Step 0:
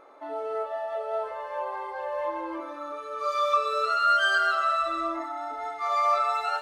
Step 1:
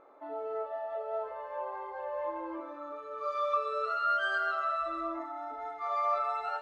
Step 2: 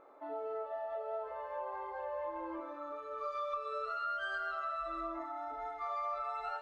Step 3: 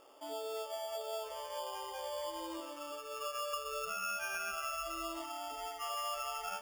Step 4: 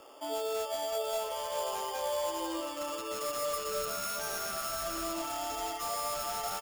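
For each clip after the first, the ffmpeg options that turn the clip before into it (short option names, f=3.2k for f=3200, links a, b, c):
-af "lowpass=f=1.3k:p=1,volume=-4dB"
-af "asubboost=boost=4.5:cutoff=80,acompressor=threshold=-35dB:ratio=4,volume=-1dB"
-af "acrusher=samples=11:mix=1:aa=0.000001,volume=-1dB"
-filter_complex "[0:a]acrossover=split=130|1200|4500[a][b][c][d];[c]aeval=exprs='(mod(178*val(0)+1,2)-1)/178':c=same[e];[a][b][e][d]amix=inputs=4:normalize=0,aecho=1:1:518:0.335,volume=7dB"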